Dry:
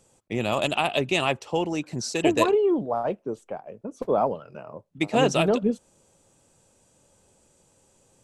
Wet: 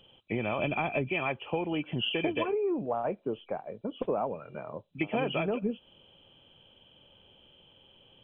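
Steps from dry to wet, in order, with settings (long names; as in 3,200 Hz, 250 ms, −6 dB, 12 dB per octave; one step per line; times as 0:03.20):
hearing-aid frequency compression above 2,300 Hz 4 to 1
0:00.59–0:01.08: low-shelf EQ 370 Hz +10 dB
downward compressor 6 to 1, threshold −27 dBFS, peak gain reduction 11.5 dB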